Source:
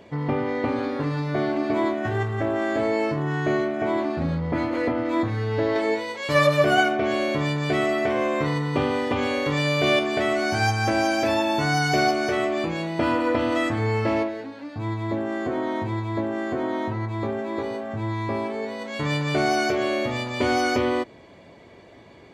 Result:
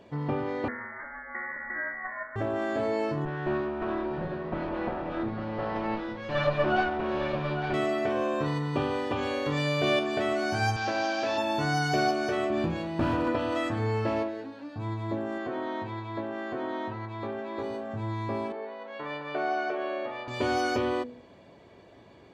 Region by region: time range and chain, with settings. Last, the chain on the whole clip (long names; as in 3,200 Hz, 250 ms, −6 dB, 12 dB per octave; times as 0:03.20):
0:00.68–0:02.36: Butterworth high-pass 460 Hz 72 dB per octave + voice inversion scrambler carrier 2,600 Hz
0:03.25–0:07.74: lower of the sound and its delayed copy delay 5.5 ms + high-frequency loss of the air 250 metres + single-tap delay 854 ms −8.5 dB
0:10.76–0:11.38: linear delta modulator 32 kbit/s, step −28 dBFS + high-pass filter 370 Hz 6 dB per octave
0:12.50–0:13.28: bass and treble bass +12 dB, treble −4 dB + hard clipping −16.5 dBFS
0:15.38–0:17.59: low-pass filter 3,800 Hz + spectral tilt +2 dB per octave
0:18.52–0:20.28: band-pass filter 550–2,700 Hz + spectral tilt −1.5 dB per octave
whole clip: high-shelf EQ 5,600 Hz −4.5 dB; notch filter 2,100 Hz, Q 6.6; hum removal 81.78 Hz, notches 6; level −4.5 dB